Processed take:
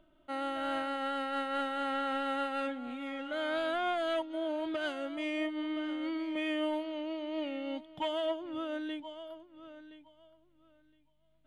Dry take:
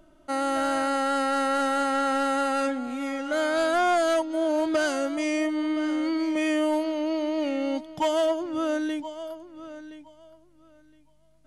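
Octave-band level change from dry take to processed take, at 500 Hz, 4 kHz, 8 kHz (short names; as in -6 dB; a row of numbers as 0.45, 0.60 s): -10.0 dB, -5.5 dB, under -20 dB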